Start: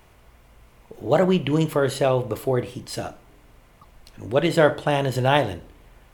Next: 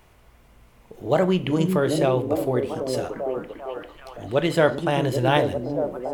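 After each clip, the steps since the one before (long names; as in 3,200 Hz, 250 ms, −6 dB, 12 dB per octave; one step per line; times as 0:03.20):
echo through a band-pass that steps 395 ms, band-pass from 230 Hz, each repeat 0.7 octaves, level −0.5 dB
level −1.5 dB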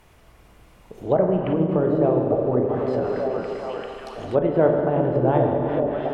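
harmonic and percussive parts rebalanced harmonic −5 dB
four-comb reverb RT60 2.5 s, combs from 28 ms, DRR 1.5 dB
treble cut that deepens with the level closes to 760 Hz, closed at −19.5 dBFS
level +3 dB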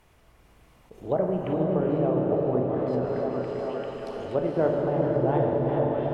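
on a send: feedback delay with all-pass diffusion 475 ms, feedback 45%, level −4 dB
on the sum: level that may rise only so fast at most 410 dB per second
level −6 dB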